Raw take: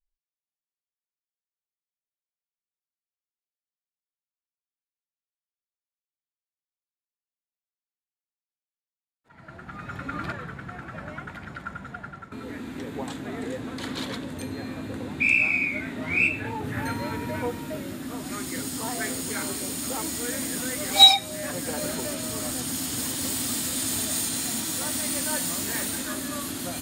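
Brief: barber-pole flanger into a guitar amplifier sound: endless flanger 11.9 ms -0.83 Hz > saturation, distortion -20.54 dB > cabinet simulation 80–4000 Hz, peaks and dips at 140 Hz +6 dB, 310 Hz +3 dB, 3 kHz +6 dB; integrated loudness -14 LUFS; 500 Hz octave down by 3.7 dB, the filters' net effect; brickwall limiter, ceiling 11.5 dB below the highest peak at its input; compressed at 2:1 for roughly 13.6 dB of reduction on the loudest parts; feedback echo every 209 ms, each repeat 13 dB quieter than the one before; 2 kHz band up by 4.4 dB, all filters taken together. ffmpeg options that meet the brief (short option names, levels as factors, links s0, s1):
-filter_complex "[0:a]equalizer=f=500:t=o:g=-5.5,equalizer=f=2000:t=o:g=4,acompressor=threshold=0.0224:ratio=2,alimiter=level_in=1.19:limit=0.0631:level=0:latency=1,volume=0.841,aecho=1:1:209|418|627:0.224|0.0493|0.0108,asplit=2[s0][s1];[s1]adelay=11.9,afreqshift=-0.83[s2];[s0][s2]amix=inputs=2:normalize=1,asoftclip=threshold=0.0299,highpass=80,equalizer=f=140:t=q:w=4:g=6,equalizer=f=310:t=q:w=4:g=3,equalizer=f=3000:t=q:w=4:g=6,lowpass=f=4000:w=0.5412,lowpass=f=4000:w=1.3066,volume=18.8"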